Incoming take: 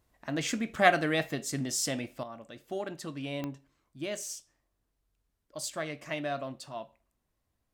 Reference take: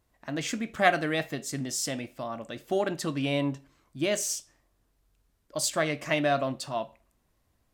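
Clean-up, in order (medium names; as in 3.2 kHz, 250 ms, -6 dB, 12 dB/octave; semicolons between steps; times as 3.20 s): de-click; trim 0 dB, from 2.23 s +8.5 dB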